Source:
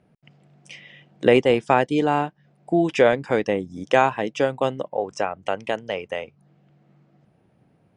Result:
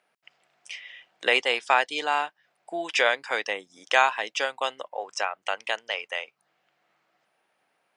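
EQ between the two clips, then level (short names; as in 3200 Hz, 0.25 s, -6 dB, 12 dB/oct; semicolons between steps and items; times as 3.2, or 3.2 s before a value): HPF 1100 Hz 12 dB/oct; dynamic EQ 4300 Hz, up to +6 dB, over -46 dBFS, Q 1.8; +3.0 dB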